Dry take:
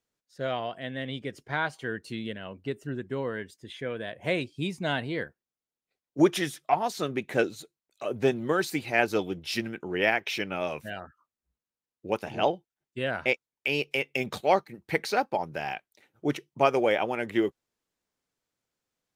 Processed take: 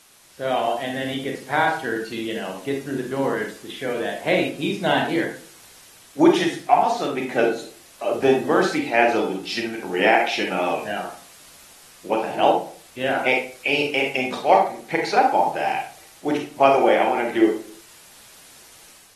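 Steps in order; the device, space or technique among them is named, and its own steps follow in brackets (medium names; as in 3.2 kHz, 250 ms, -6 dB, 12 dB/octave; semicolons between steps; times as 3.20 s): filmed off a television (band-pass 210–7600 Hz; peaking EQ 790 Hz +7 dB 0.5 oct; reverberation RT60 0.45 s, pre-delay 31 ms, DRR 1.5 dB; white noise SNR 25 dB; level rider gain up to 6 dB; trim -1 dB; AAC 32 kbps 44.1 kHz)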